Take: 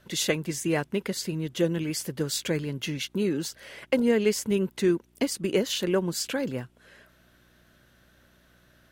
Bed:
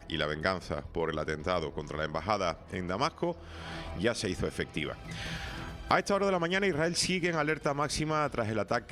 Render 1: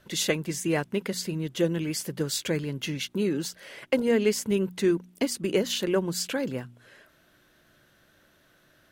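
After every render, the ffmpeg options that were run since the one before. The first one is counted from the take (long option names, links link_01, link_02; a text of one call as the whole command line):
ffmpeg -i in.wav -af "bandreject=frequency=60:width_type=h:width=4,bandreject=frequency=120:width_type=h:width=4,bandreject=frequency=180:width_type=h:width=4,bandreject=frequency=240:width_type=h:width=4" out.wav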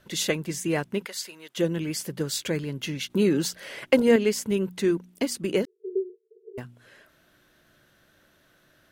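ffmpeg -i in.wav -filter_complex "[0:a]asettb=1/sr,asplit=3[link_01][link_02][link_03];[link_01]atrim=end=1.054[link_04];[link_02]atrim=start=1.05:end=1.57,asetpts=PTS-STARTPTS,afade=type=in:duration=0.004:curve=qsin,afade=type=out:start_time=0.516:duration=0.004:curve=qsin,highpass=820[link_05];[link_03]atrim=start=1.566[link_06];[link_04][link_05]acrossfade=duration=0.004:curve1=hsin:curve2=qsin[link_07];[link_07][link_06]acrossfade=duration=0.004:curve1=qsin:curve2=hsin,asettb=1/sr,asplit=3[link_08][link_09][link_10];[link_08]atrim=end=5.654[link_11];[link_09]atrim=start=5.65:end=6.58,asetpts=PTS-STARTPTS,afade=type=in:duration=0.004:curve=qsin,afade=type=out:start_time=0.926:duration=0.004:curve=qsin,asuperpass=centerf=410:order=20:qfactor=4.2[link_12];[link_10]atrim=start=6.576[link_13];[link_11][link_12]acrossfade=duration=0.004:curve1=hsin:curve2=qsin[link_14];[link_14][link_13]acrossfade=duration=0.004:curve1=qsin:curve2=hsin,asplit=3[link_15][link_16][link_17];[link_15]atrim=end=3.102[link_18];[link_16]atrim=start=3.098:end=4.162,asetpts=PTS-STARTPTS,volume=5dB[link_19];[link_17]atrim=start=4.158[link_20];[link_18][link_19]acrossfade=duration=0.004:curve1=hsin:curve2=hsin[link_21];[link_21][link_20]acrossfade=duration=0.004:curve1=hsin:curve2=hsin" out.wav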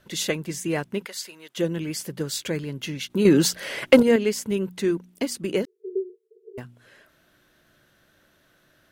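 ffmpeg -i in.wav -filter_complex "[0:a]asettb=1/sr,asplit=3[link_01][link_02][link_03];[link_01]atrim=end=3.254[link_04];[link_02]atrim=start=3.25:end=4.03,asetpts=PTS-STARTPTS,afade=type=in:duration=0.004:curve=qsin,afade=type=out:start_time=0.776:duration=0.004:curve=qsin,acontrast=85[link_05];[link_03]atrim=start=4.026[link_06];[link_04][link_05]acrossfade=duration=0.004:curve1=hsin:curve2=qsin[link_07];[link_07][link_06]acrossfade=duration=0.004:curve1=qsin:curve2=hsin" out.wav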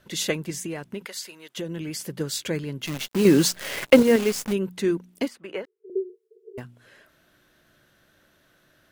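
ffmpeg -i in.wav -filter_complex "[0:a]asettb=1/sr,asplit=3[link_01][link_02][link_03];[link_01]atrim=end=0.504[link_04];[link_02]atrim=start=0.5:end=2.07,asetpts=PTS-STARTPTS,afade=type=in:duration=0.004:curve=qsin,afade=type=out:start_time=1.566:duration=0.004:curve=qsin,acompressor=threshold=-28dB:ratio=6:attack=3.2:release=140:knee=1:detection=peak[link_05];[link_03]atrim=start=2.066[link_06];[link_04][link_05]acrossfade=duration=0.004:curve1=hsin:curve2=qsin[link_07];[link_07][link_06]acrossfade=duration=0.004:curve1=qsin:curve2=hsin,asplit=3[link_08][link_09][link_10];[link_08]afade=type=out:start_time=2.85:duration=0.02[link_11];[link_09]acrusher=bits=6:dc=4:mix=0:aa=0.000001,afade=type=in:start_time=2.85:duration=0.02,afade=type=out:start_time=4.52:duration=0.02[link_12];[link_10]afade=type=in:start_time=4.52:duration=0.02[link_13];[link_11][link_12][link_13]amix=inputs=3:normalize=0,asettb=1/sr,asplit=3[link_14][link_15][link_16];[link_14]atrim=end=5.284[link_17];[link_15]atrim=start=5.28:end=5.9,asetpts=PTS-STARTPTS,afade=type=in:duration=0.004:curve=qsin,afade=type=out:start_time=0.616:duration=0.004:curve=qsin,acrossover=split=530 2600:gain=0.126 1 0.126[link_18][link_19][link_20];[link_18][link_19][link_20]amix=inputs=3:normalize=0[link_21];[link_16]atrim=start=5.896[link_22];[link_17][link_21]acrossfade=duration=0.004:curve1=hsin:curve2=qsin[link_23];[link_23][link_22]acrossfade=duration=0.004:curve1=qsin:curve2=hsin" out.wav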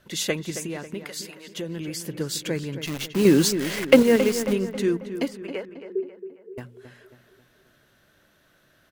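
ffmpeg -i in.wav -filter_complex "[0:a]asplit=2[link_01][link_02];[link_02]adelay=271,lowpass=frequency=2800:poles=1,volume=-10.5dB,asplit=2[link_03][link_04];[link_04]adelay=271,lowpass=frequency=2800:poles=1,volume=0.51,asplit=2[link_05][link_06];[link_06]adelay=271,lowpass=frequency=2800:poles=1,volume=0.51,asplit=2[link_07][link_08];[link_08]adelay=271,lowpass=frequency=2800:poles=1,volume=0.51,asplit=2[link_09][link_10];[link_10]adelay=271,lowpass=frequency=2800:poles=1,volume=0.51,asplit=2[link_11][link_12];[link_12]adelay=271,lowpass=frequency=2800:poles=1,volume=0.51[link_13];[link_01][link_03][link_05][link_07][link_09][link_11][link_13]amix=inputs=7:normalize=0" out.wav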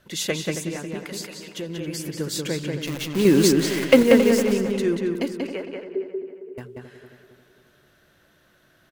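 ffmpeg -i in.wav -filter_complex "[0:a]asplit=2[link_01][link_02];[link_02]adelay=186,lowpass=frequency=4300:poles=1,volume=-3dB,asplit=2[link_03][link_04];[link_04]adelay=186,lowpass=frequency=4300:poles=1,volume=0.23,asplit=2[link_05][link_06];[link_06]adelay=186,lowpass=frequency=4300:poles=1,volume=0.23[link_07];[link_01][link_03][link_05][link_07]amix=inputs=4:normalize=0" out.wav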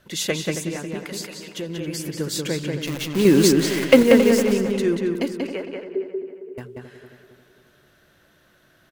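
ffmpeg -i in.wav -af "volume=1.5dB,alimiter=limit=-1dB:level=0:latency=1" out.wav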